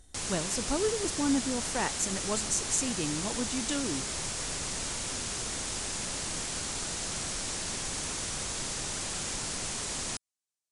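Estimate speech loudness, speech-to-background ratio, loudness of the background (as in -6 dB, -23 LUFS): -32.0 LUFS, 1.0 dB, -33.0 LUFS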